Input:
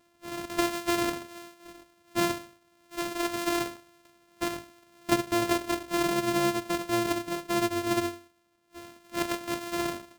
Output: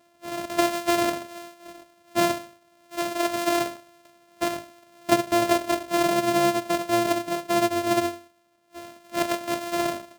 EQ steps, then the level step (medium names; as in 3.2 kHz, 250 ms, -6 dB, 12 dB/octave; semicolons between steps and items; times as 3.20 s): high-pass 110 Hz 6 dB/octave; peaking EQ 640 Hz +10 dB 0.24 oct; +3.5 dB